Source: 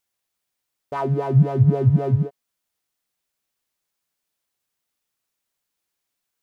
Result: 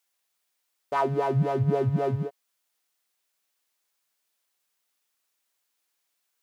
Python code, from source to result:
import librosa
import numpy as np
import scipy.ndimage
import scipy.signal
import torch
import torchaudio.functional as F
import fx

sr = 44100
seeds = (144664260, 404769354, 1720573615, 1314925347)

y = fx.highpass(x, sr, hz=570.0, slope=6)
y = y * 10.0 ** (3.0 / 20.0)